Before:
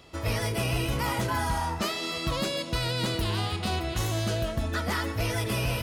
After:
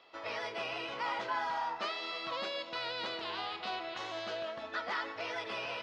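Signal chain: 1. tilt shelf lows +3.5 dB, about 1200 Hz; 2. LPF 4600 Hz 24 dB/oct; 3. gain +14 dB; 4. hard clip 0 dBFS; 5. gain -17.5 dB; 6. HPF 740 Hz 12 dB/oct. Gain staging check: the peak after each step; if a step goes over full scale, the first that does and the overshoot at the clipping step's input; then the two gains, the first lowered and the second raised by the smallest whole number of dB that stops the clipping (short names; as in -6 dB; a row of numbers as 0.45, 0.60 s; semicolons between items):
-15.5, -16.0, -2.0, -2.0, -19.5, -24.5 dBFS; no overload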